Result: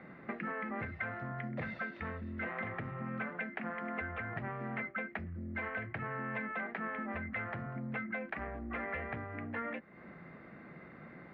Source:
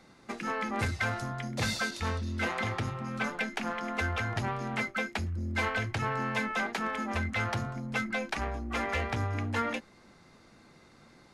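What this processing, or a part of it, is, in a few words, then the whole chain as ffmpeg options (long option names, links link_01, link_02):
bass amplifier: -af "acompressor=threshold=-44dB:ratio=4,highpass=70,equalizer=frequency=98:width_type=q:width=4:gain=-7,equalizer=frequency=170:width_type=q:width=4:gain=6,equalizer=frequency=620:width_type=q:width=4:gain=3,equalizer=frequency=890:width_type=q:width=4:gain=-5,equalizer=frequency=1900:width_type=q:width=4:gain=6,lowpass=frequency=2200:width=0.5412,lowpass=frequency=2200:width=1.3066,volume=5dB"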